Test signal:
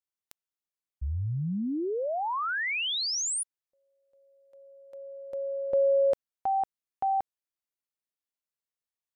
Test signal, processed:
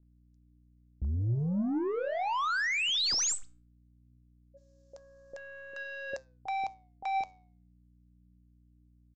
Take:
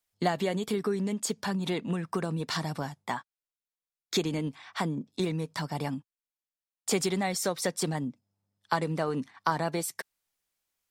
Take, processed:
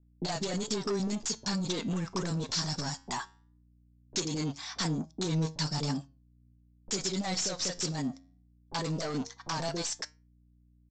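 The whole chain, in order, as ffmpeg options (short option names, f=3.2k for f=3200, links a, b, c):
-filter_complex "[0:a]agate=range=-49dB:threshold=-55dB:ratio=16:release=88:detection=peak,highshelf=f=3.8k:t=q:w=1.5:g=12.5,acompressor=threshold=-29dB:ratio=2.5:attack=13:release=270:knee=1:detection=rms,aeval=exprs='val(0)+0.000447*(sin(2*PI*60*n/s)+sin(2*PI*2*60*n/s)/2+sin(2*PI*3*60*n/s)/3+sin(2*PI*4*60*n/s)/4+sin(2*PI*5*60*n/s)/5)':c=same,aeval=exprs='0.282*(cos(1*acos(clip(val(0)/0.282,-1,1)))-cos(1*PI/2))+0.126*(cos(3*acos(clip(val(0)/0.282,-1,1)))-cos(3*PI/2))+0.0126*(cos(6*acos(clip(val(0)/0.282,-1,1)))-cos(6*PI/2))+0.0631*(cos(7*acos(clip(val(0)/0.282,-1,1)))-cos(7*PI/2))':c=same,aresample=16000,asoftclip=type=tanh:threshold=-27.5dB,aresample=44100,flanger=delay=6.2:depth=5.1:regen=86:speed=0.19:shape=sinusoidal,acrossover=split=560[a][b];[b]adelay=30[c];[a][c]amix=inputs=2:normalize=0,volume=5dB"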